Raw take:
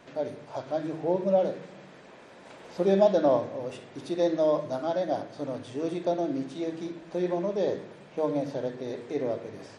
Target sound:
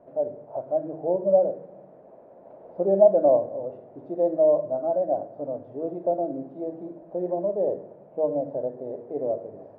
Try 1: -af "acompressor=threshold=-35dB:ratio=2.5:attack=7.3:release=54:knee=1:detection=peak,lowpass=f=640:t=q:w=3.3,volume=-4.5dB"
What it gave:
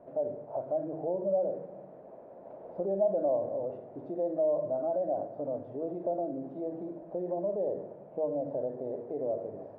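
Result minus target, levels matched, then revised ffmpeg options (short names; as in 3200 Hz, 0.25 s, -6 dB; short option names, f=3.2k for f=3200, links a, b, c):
compressor: peak gain reduction +12.5 dB
-af "lowpass=f=640:t=q:w=3.3,volume=-4.5dB"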